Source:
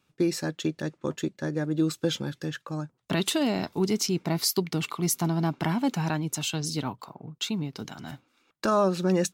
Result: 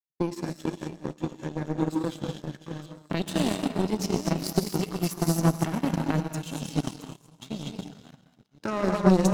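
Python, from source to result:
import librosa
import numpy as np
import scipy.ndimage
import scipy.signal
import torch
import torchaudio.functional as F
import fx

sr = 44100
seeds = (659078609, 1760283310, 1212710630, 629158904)

p1 = fx.reverse_delay(x, sr, ms=477, wet_db=-7)
p2 = scipy.signal.sosfilt(scipy.signal.butter(4, 100.0, 'highpass', fs=sr, output='sos'), p1)
p3 = fx.low_shelf(p2, sr, hz=330.0, db=10.5)
p4 = p3 + fx.echo_wet_highpass(p3, sr, ms=130, feedback_pct=71, hz=2200.0, wet_db=-13.0, dry=0)
p5 = fx.rev_gated(p4, sr, seeds[0], gate_ms=270, shape='rising', drr_db=1.0)
y = fx.power_curve(p5, sr, exponent=2.0)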